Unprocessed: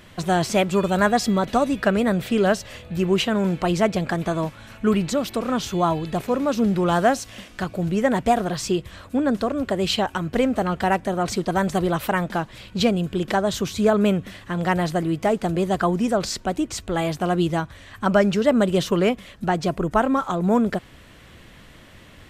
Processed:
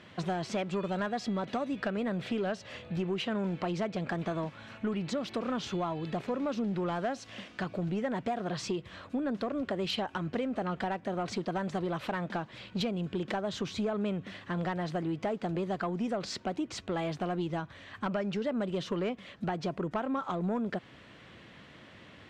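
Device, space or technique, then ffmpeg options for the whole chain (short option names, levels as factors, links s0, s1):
AM radio: -af "highpass=120,lowpass=4500,acompressor=threshold=0.0631:ratio=6,asoftclip=type=tanh:threshold=0.112,volume=0.631"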